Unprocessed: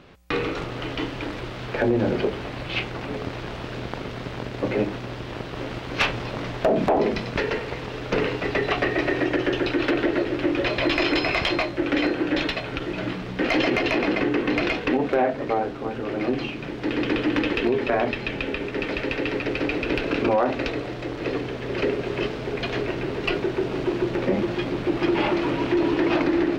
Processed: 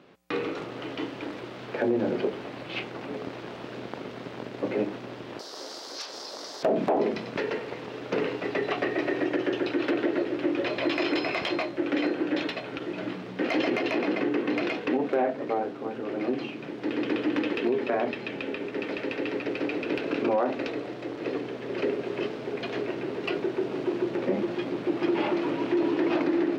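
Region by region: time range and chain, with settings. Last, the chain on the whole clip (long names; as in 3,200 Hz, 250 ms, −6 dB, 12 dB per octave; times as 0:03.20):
0:05.39–0:06.63: high-pass filter 500 Hz + high shelf with overshoot 3,600 Hz +12 dB, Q 3 + downward compressor 4 to 1, threshold −28 dBFS
whole clip: high-pass filter 220 Hz 12 dB per octave; tilt shelving filter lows +3 dB, about 700 Hz; level −4.5 dB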